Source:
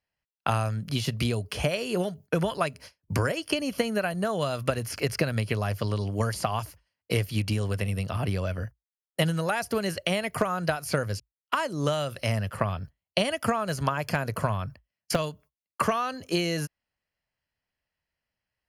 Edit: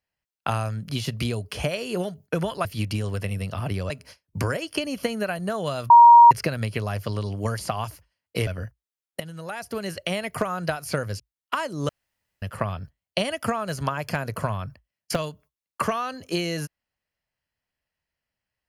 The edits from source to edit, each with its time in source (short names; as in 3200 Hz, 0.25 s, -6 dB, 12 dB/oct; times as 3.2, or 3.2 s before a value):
4.65–5.06 bleep 944 Hz -6.5 dBFS
7.22–8.47 move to 2.65
9.2–10.47 fade in equal-power, from -17 dB
11.89–12.42 room tone